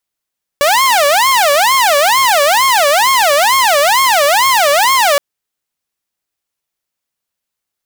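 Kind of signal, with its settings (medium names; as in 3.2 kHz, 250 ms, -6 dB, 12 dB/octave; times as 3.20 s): siren wail 567–1080 Hz 2.2 per s saw -5.5 dBFS 4.57 s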